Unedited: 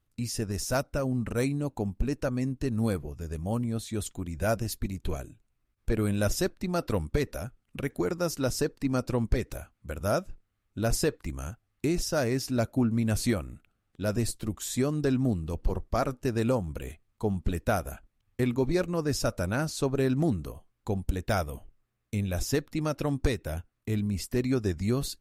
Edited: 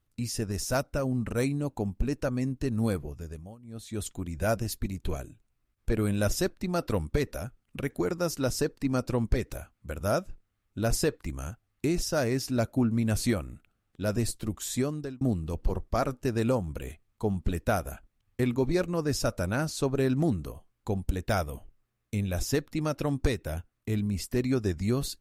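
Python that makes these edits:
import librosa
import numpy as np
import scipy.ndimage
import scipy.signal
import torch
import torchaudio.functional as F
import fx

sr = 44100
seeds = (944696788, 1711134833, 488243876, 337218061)

y = fx.edit(x, sr, fx.fade_down_up(start_s=3.11, length_s=0.96, db=-23.5, fade_s=0.45),
    fx.fade_out_span(start_s=14.76, length_s=0.45), tone=tone)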